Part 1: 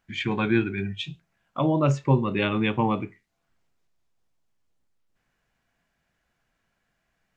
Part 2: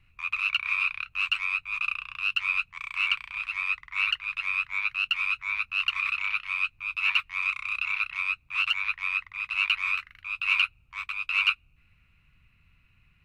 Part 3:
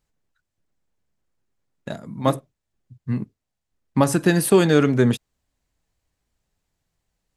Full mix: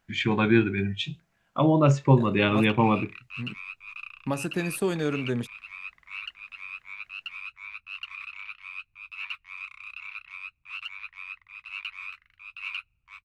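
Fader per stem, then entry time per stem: +2.0, -11.5, -11.5 dB; 0.00, 2.15, 0.30 s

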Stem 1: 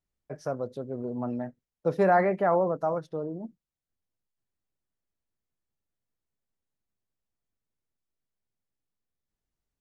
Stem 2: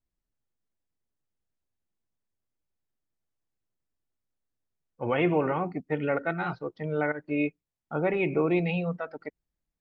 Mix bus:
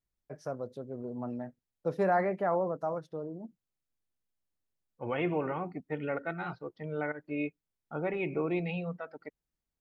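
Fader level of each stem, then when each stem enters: -5.5, -6.5 dB; 0.00, 0.00 s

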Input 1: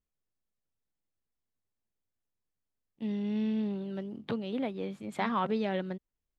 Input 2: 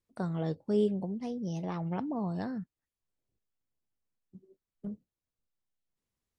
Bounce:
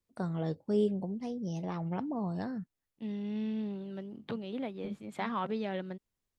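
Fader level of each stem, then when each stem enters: -4.0, -1.0 dB; 0.00, 0.00 s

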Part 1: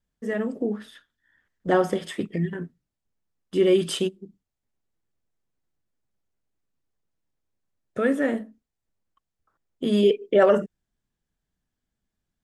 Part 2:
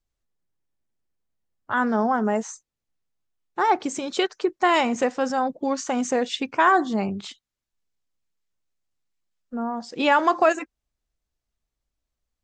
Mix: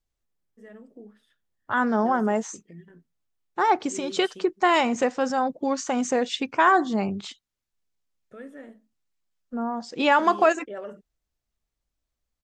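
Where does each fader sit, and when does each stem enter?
-19.5, -0.5 dB; 0.35, 0.00 s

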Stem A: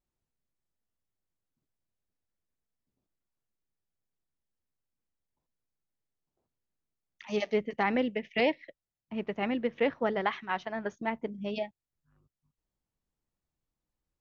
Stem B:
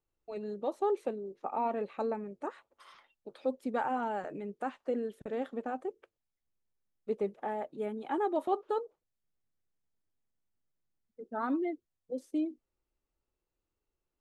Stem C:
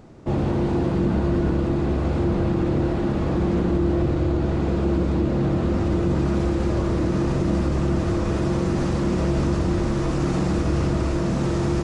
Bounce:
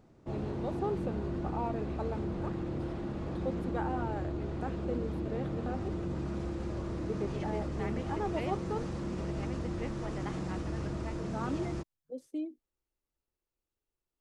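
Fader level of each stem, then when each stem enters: -15.0, -4.5, -14.5 dB; 0.00, 0.00, 0.00 s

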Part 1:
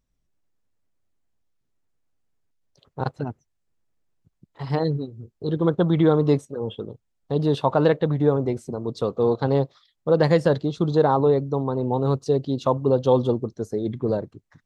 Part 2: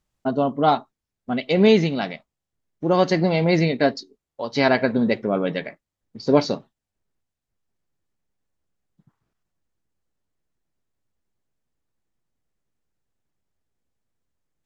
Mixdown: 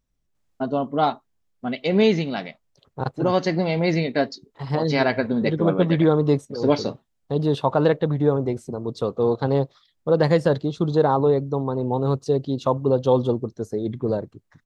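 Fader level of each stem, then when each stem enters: 0.0, -2.5 dB; 0.00, 0.35 s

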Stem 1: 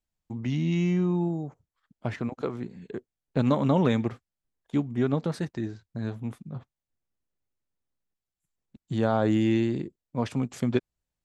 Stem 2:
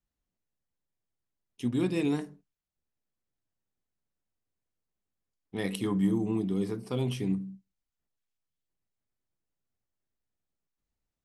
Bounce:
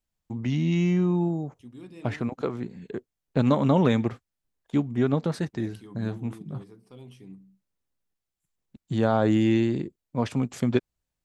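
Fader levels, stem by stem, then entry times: +2.0, -16.0 dB; 0.00, 0.00 s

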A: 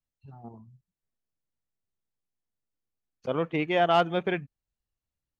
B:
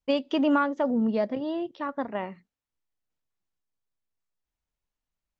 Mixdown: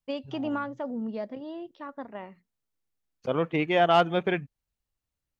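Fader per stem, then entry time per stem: +1.5, -8.0 dB; 0.00, 0.00 s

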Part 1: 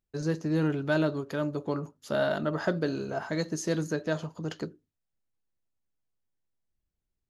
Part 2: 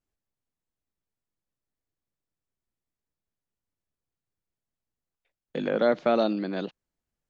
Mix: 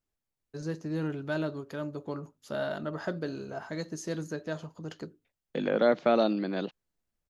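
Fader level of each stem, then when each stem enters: -5.5, -1.0 dB; 0.40, 0.00 s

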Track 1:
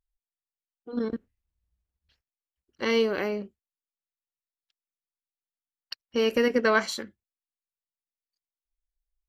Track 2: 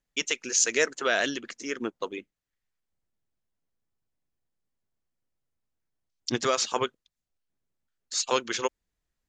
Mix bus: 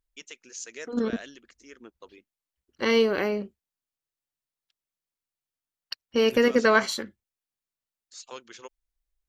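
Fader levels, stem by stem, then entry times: +2.5, -16.0 dB; 0.00, 0.00 s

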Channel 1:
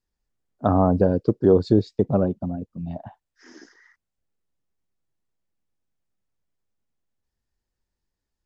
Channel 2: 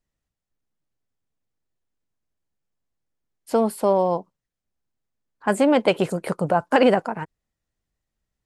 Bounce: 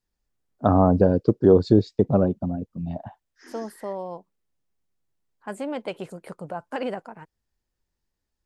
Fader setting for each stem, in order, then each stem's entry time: +1.0, -13.0 dB; 0.00, 0.00 s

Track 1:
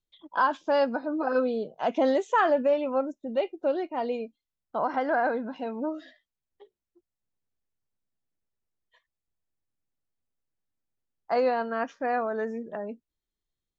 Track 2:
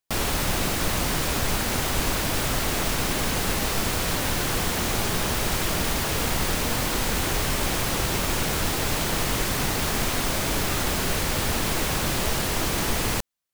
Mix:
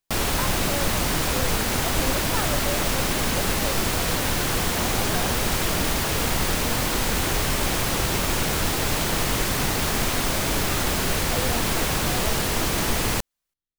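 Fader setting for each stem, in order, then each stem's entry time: -9.0, +1.5 dB; 0.00, 0.00 s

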